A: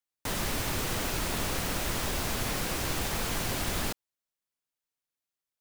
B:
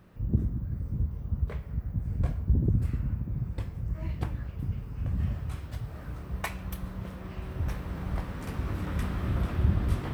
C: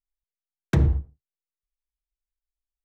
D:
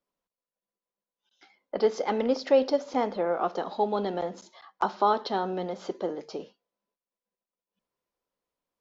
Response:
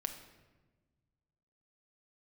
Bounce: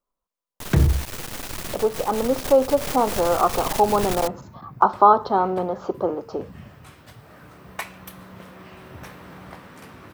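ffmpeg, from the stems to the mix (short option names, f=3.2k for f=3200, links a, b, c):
-filter_complex "[0:a]acrusher=bits=3:dc=4:mix=0:aa=0.000001,adelay=350,volume=-0.5dB[a];[1:a]highpass=150,lowshelf=f=380:g=-7.5,adelay=1350,volume=-7dB[b];[2:a]volume=2dB[c];[3:a]highshelf=f=1.6k:t=q:w=3:g=-9.5,volume=-1.5dB,asplit=2[d][e];[e]apad=whole_len=262702[f];[a][f]sidechaincompress=threshold=-27dB:ratio=8:attack=23:release=178[g];[g][b][c][d]amix=inputs=4:normalize=0,dynaudnorm=f=250:g=17:m=12dB"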